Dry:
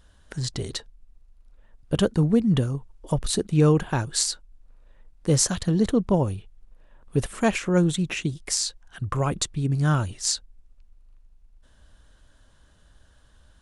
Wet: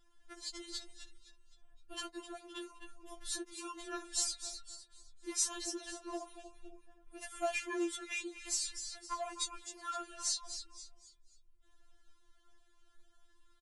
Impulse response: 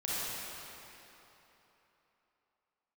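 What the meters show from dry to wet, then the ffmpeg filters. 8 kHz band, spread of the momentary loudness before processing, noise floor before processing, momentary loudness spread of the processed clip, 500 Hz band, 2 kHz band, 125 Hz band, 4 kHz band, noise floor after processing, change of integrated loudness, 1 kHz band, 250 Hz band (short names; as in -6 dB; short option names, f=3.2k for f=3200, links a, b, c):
-9.0 dB, 12 LU, -57 dBFS, 20 LU, -18.0 dB, -10.5 dB, under -40 dB, -10.0 dB, -67 dBFS, -15.0 dB, -11.0 dB, -22.0 dB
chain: -filter_complex "[0:a]acrossover=split=520[a][b];[a]acompressor=threshold=-34dB:ratio=6[c];[b]asplit=5[d][e][f][g][h];[e]adelay=258,afreqshift=-94,volume=-9.5dB[i];[f]adelay=516,afreqshift=-188,volume=-17.9dB[j];[g]adelay=774,afreqshift=-282,volume=-26.3dB[k];[h]adelay=1032,afreqshift=-376,volume=-34.7dB[l];[d][i][j][k][l]amix=inputs=5:normalize=0[m];[c][m]amix=inputs=2:normalize=0,flanger=delay=7.9:depth=1.5:regen=-47:speed=0.74:shape=sinusoidal,afftfilt=real='re*4*eq(mod(b,16),0)':imag='im*4*eq(mod(b,16),0)':win_size=2048:overlap=0.75,volume=-4dB"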